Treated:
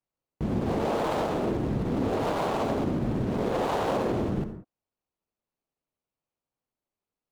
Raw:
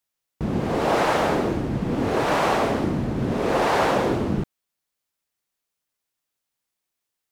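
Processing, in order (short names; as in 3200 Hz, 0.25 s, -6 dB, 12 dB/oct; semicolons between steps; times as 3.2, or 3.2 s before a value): median filter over 25 samples; limiter -21 dBFS, peak gain reduction 9 dB; reverb, pre-delay 53 ms, DRR 8 dB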